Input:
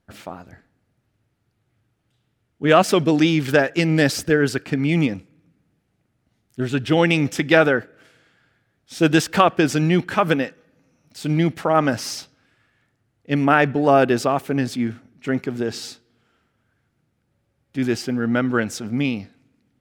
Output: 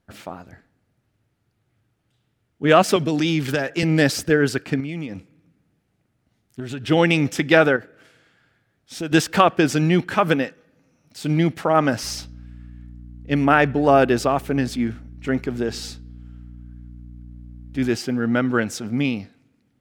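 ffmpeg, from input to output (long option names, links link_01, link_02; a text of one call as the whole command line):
ffmpeg -i in.wav -filter_complex "[0:a]asettb=1/sr,asplit=3[link_01][link_02][link_03];[link_01]atrim=end=2.964[link_04];[link_02]atrim=start=2.96:end=3.83,asetpts=PTS-STARTPTS,afade=type=in:duration=0.004:curve=qsin,afade=type=out:start_time=0.866:duration=0.004:curve=qsin,acrossover=split=140|3000[link_05][link_06][link_07];[link_06]acompressor=threshold=-18dB:ratio=6:attack=3.2:release=140:knee=2.83:detection=peak[link_08];[link_05][link_08][link_07]amix=inputs=3:normalize=0[link_09];[link_03]atrim=start=3.826[link_10];[link_04][link_09]acrossfade=duration=0.004:curve1=hsin:curve2=qsin[link_11];[link_11][link_10]acrossfade=duration=0.004:curve1=qsin:curve2=hsin,asettb=1/sr,asplit=3[link_12][link_13][link_14];[link_12]atrim=end=4.804[link_15];[link_13]atrim=start=4.8:end=6.88,asetpts=PTS-STARTPTS,afade=type=in:duration=0.004:curve=qsin,afade=type=out:start_time=2.076:duration=0.004:curve=qsin,acompressor=threshold=-26dB:ratio=6:attack=3.2:release=140:knee=1:detection=peak[link_16];[link_14]atrim=start=6.876[link_17];[link_15][link_16]acrossfade=duration=0.004:curve1=hsin:curve2=qsin[link_18];[link_18][link_17]acrossfade=duration=0.004:curve1=qsin:curve2=hsin,asettb=1/sr,asplit=3[link_19][link_20][link_21];[link_19]atrim=end=7.764[link_22];[link_20]atrim=start=7.76:end=9.12,asetpts=PTS-STARTPTS,afade=type=in:duration=0.004:curve=qsin,afade=type=out:start_time=1.356:duration=0.004:curve=qsin,acompressor=threshold=-29dB:ratio=2.5:attack=3.2:release=140:knee=1:detection=peak[link_23];[link_21]atrim=start=9.116[link_24];[link_22][link_23]acrossfade=duration=0.004:curve1=hsin:curve2=qsin[link_25];[link_25][link_24]acrossfade=duration=0.004:curve1=qsin:curve2=hsin,asettb=1/sr,asplit=3[link_26][link_27][link_28];[link_26]atrim=end=12.034[link_29];[link_27]atrim=start=12.03:end=17.9,asetpts=PTS-STARTPTS,afade=type=in:duration=0.004:curve=qsin,afade=type=out:start_time=5.866:duration=0.004:curve=qsin,aeval=exprs='val(0)+0.0126*(sin(2*PI*60*n/s)+sin(2*PI*2*60*n/s)/2+sin(2*PI*3*60*n/s)/3+sin(2*PI*4*60*n/s)/4+sin(2*PI*5*60*n/s)/5)':channel_layout=same[link_30];[link_28]atrim=start=17.896[link_31];[link_29][link_30]acrossfade=duration=0.004:curve1=hsin:curve2=qsin[link_32];[link_32][link_31]acrossfade=duration=0.004:curve1=qsin:curve2=hsin" out.wav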